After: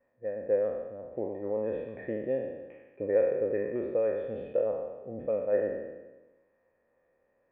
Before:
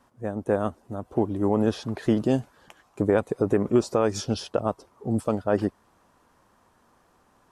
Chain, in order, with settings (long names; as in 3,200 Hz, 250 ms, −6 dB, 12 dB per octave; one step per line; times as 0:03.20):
peak hold with a decay on every bin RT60 1.18 s
formant resonators in series e